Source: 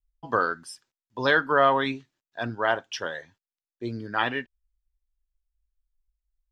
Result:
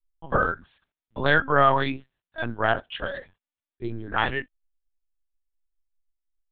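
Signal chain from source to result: LPC vocoder at 8 kHz pitch kept; gain +1.5 dB

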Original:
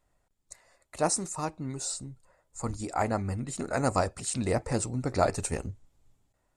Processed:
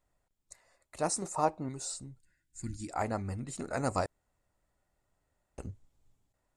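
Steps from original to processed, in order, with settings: 1.22–1.69 bell 670 Hz +13 dB 1.8 oct; 2.2–2.89 spectral gain 380–1400 Hz -24 dB; 4.06–5.58 room tone; gain -5 dB

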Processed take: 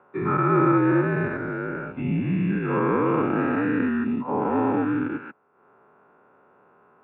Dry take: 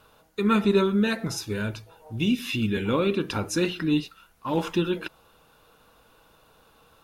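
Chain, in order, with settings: spectral dilation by 0.48 s; transient shaper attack +2 dB, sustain -8 dB; mistuned SSB -62 Hz 220–2000 Hz; gain -3.5 dB

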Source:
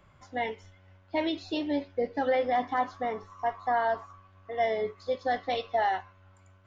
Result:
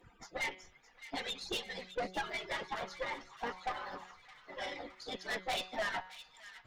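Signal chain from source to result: median-filter separation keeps percussive; de-hum 185.9 Hz, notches 27; tube stage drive 39 dB, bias 0.55; thin delay 0.614 s, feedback 52%, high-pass 1700 Hz, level -13 dB; gain +7.5 dB

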